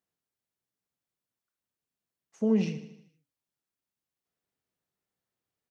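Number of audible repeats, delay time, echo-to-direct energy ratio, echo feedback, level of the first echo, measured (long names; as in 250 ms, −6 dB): 5, 77 ms, −11.0 dB, 55%, −12.5 dB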